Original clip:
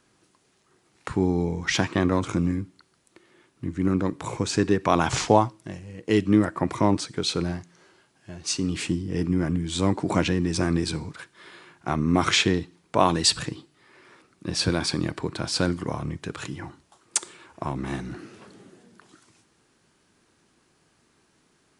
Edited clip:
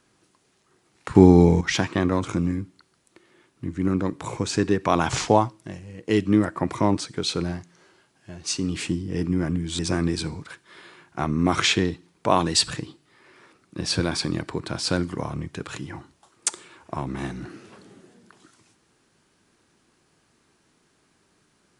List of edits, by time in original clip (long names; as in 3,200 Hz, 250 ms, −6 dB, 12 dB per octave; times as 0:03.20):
0:01.15–0:01.61: clip gain +10.5 dB
0:09.79–0:10.48: remove